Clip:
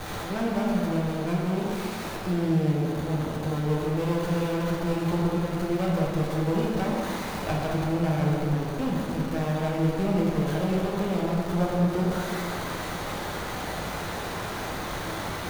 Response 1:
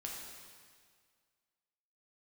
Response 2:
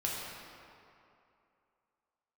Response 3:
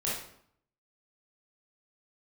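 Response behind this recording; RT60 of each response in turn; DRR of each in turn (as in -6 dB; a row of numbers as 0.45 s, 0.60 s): 2; 1.9 s, 2.7 s, 0.65 s; -2.5 dB, -5.0 dB, -7.5 dB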